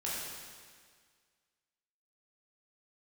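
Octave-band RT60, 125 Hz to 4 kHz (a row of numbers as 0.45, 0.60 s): 1.8, 1.8, 1.8, 1.8, 1.8, 1.7 s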